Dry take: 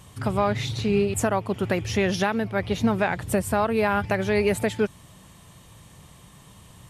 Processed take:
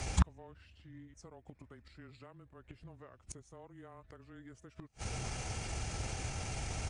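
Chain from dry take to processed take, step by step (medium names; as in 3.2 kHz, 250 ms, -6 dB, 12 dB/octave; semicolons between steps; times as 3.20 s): frequency shift -20 Hz; pitch shift -5 st; inverted gate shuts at -23 dBFS, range -41 dB; trim +10 dB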